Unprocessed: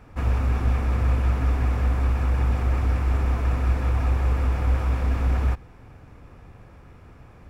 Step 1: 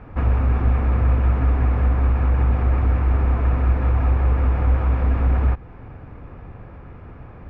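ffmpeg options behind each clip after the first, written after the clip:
-filter_complex "[0:a]lowpass=3000,aemphasis=mode=reproduction:type=75kf,asplit=2[s0][s1];[s1]acompressor=threshold=0.0316:ratio=6,volume=1.12[s2];[s0][s2]amix=inputs=2:normalize=0,volume=1.19"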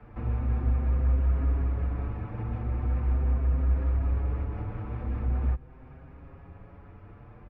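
-filter_complex "[0:a]acrossover=split=140|520[s0][s1][s2];[s2]alimiter=level_in=2.24:limit=0.0631:level=0:latency=1:release=394,volume=0.447[s3];[s0][s1][s3]amix=inputs=3:normalize=0,asplit=2[s4][s5];[s5]adelay=6.4,afreqshift=0.41[s6];[s4][s6]amix=inputs=2:normalize=1,volume=0.501"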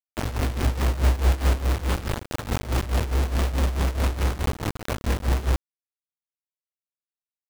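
-af "acrusher=bits=4:mix=0:aa=0.000001,tremolo=f=4.7:d=0.8,volume=2"

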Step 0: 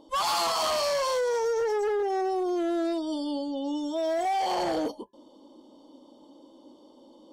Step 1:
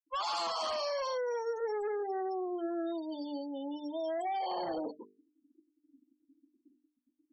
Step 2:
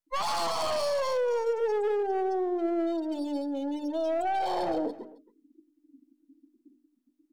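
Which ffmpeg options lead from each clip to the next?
-af "afftfilt=real='re*gte(hypot(re,im),0.0251)':imag='im*gte(hypot(re,im),0.0251)':win_size=1024:overlap=0.75,bandreject=f=50:t=h:w=6,bandreject=f=100:t=h:w=6,bandreject=f=150:t=h:w=6,bandreject=f=200:t=h:w=6,bandreject=f=250:t=h:w=6,bandreject=f=300:t=h:w=6,bandreject=f=350:t=h:w=6,bandreject=f=400:t=h:w=6,bandreject=f=450:t=h:w=6,volume=0.422"
-filter_complex "[0:a]acrossover=split=890[s0][s1];[s1]aeval=exprs='max(val(0),0)':c=same[s2];[s0][s2]amix=inputs=2:normalize=0,aecho=1:1:268:0.1,volume=2.37"

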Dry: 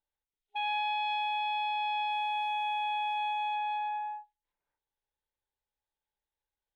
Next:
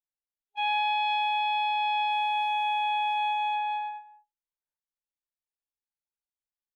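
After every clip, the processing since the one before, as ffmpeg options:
-af "agate=range=0.1:threshold=0.0224:ratio=16:detection=peak,volume=1.78"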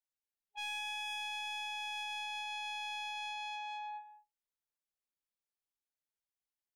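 -filter_complex "[0:a]acrossover=split=1900[s0][s1];[s0]alimiter=level_in=3.55:limit=0.0631:level=0:latency=1,volume=0.282[s2];[s2][s1]amix=inputs=2:normalize=0,asoftclip=type=tanh:threshold=0.0211,volume=0.668"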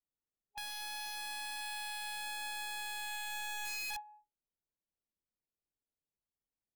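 -af "adynamicsmooth=sensitivity=3.5:basefreq=550,aeval=exprs='(mod(168*val(0)+1,2)-1)/168':c=same,volume=2.37"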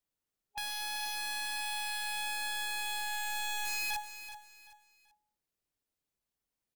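-af "aecho=1:1:383|766|1149:0.251|0.0754|0.0226,volume=1.78"

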